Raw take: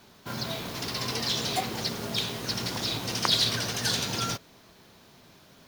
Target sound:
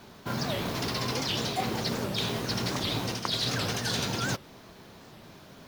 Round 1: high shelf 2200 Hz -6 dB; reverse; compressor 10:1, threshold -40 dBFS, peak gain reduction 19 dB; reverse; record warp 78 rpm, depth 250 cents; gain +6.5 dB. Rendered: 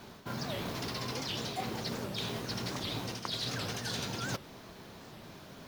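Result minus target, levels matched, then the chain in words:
compressor: peak gain reduction +6.5 dB
high shelf 2200 Hz -6 dB; reverse; compressor 10:1, threshold -32.5 dBFS, peak gain reduction 12 dB; reverse; record warp 78 rpm, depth 250 cents; gain +6.5 dB

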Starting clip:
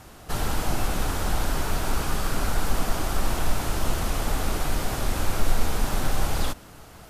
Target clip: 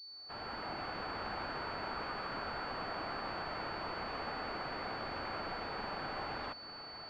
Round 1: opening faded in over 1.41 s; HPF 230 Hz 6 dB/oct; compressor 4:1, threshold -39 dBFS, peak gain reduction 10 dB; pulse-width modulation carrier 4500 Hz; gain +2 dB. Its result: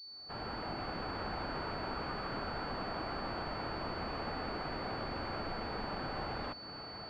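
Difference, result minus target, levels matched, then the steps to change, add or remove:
250 Hz band +4.0 dB
change: HPF 810 Hz 6 dB/oct

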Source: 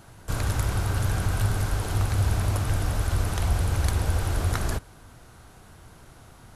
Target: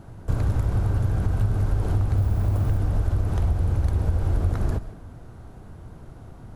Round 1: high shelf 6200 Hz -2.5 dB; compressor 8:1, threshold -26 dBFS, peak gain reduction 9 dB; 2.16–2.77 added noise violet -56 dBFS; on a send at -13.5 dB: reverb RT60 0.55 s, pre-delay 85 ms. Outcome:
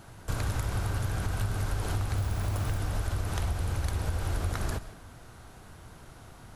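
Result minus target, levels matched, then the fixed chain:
1000 Hz band +7.0 dB
high shelf 6200 Hz -2.5 dB; compressor 8:1, threshold -26 dBFS, peak gain reduction 9 dB; tilt shelf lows +8.5 dB, about 990 Hz; 2.16–2.77 added noise violet -56 dBFS; on a send at -13.5 dB: reverb RT60 0.55 s, pre-delay 85 ms

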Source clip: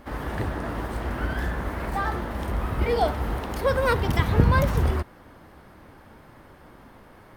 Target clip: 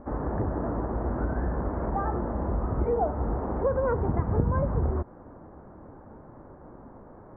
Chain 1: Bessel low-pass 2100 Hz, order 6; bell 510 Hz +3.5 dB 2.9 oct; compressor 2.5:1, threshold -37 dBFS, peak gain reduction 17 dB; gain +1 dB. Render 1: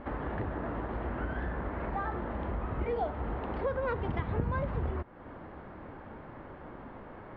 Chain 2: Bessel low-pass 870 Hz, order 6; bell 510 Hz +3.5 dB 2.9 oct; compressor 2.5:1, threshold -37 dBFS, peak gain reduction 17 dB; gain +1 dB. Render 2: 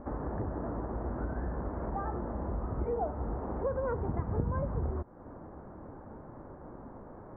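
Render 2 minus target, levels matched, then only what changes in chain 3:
compressor: peak gain reduction +7 dB
change: compressor 2.5:1, threshold -25.5 dBFS, peak gain reduction 10 dB

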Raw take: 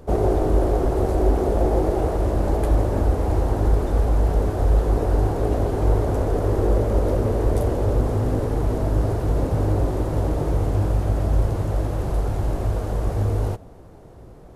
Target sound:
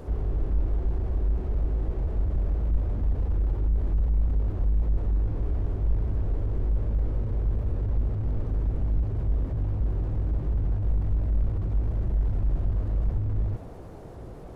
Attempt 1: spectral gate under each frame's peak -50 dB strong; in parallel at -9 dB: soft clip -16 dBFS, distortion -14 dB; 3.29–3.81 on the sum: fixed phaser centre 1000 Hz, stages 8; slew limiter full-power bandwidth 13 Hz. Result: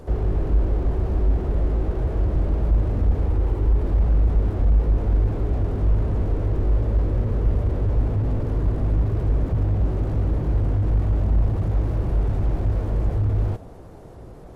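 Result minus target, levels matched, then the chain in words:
slew limiter: distortion -9 dB
spectral gate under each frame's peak -50 dB strong; in parallel at -9 dB: soft clip -16 dBFS, distortion -14 dB; 3.29–3.81 on the sum: fixed phaser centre 1000 Hz, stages 8; slew limiter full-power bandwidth 5 Hz

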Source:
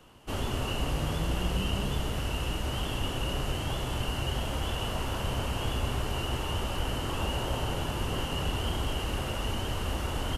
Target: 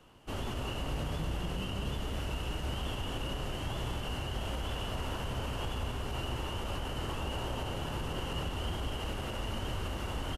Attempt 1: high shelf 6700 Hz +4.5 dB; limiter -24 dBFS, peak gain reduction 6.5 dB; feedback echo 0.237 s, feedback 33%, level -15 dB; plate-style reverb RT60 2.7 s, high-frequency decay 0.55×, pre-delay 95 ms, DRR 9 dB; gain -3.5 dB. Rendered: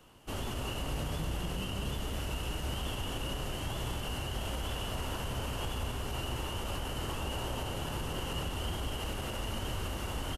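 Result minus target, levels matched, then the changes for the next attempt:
8000 Hz band +5.0 dB
change: high shelf 6700 Hz -4.5 dB

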